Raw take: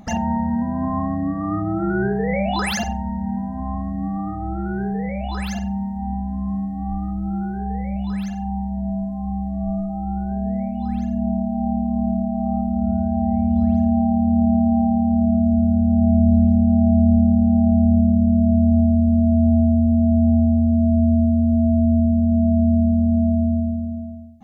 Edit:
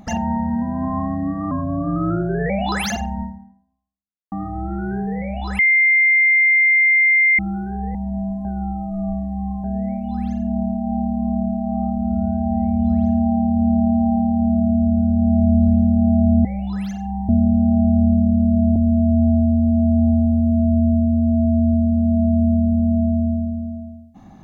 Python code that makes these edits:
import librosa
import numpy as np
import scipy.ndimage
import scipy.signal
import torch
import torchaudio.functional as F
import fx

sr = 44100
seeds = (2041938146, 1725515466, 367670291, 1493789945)

y = fx.edit(x, sr, fx.speed_span(start_s=1.51, length_s=0.86, speed=0.87),
    fx.fade_out_span(start_s=3.1, length_s=1.09, curve='exp'),
    fx.bleep(start_s=5.46, length_s=1.8, hz=2100.0, db=-11.0),
    fx.move(start_s=7.82, length_s=0.84, to_s=17.16),
    fx.reverse_span(start_s=9.16, length_s=1.19),
    fx.cut(start_s=18.63, length_s=0.39), tone=tone)